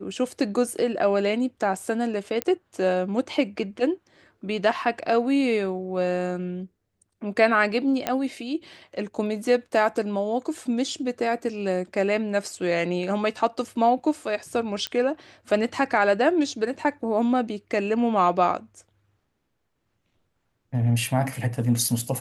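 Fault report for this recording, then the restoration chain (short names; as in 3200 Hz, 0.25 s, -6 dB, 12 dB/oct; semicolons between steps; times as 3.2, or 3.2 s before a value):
2.42 pop -10 dBFS
8.07 pop -9 dBFS
14.87 pop -13 dBFS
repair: de-click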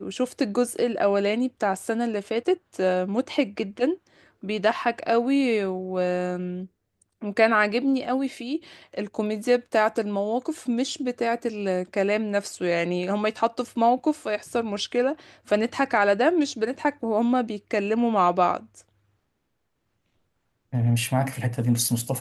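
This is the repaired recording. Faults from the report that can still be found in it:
none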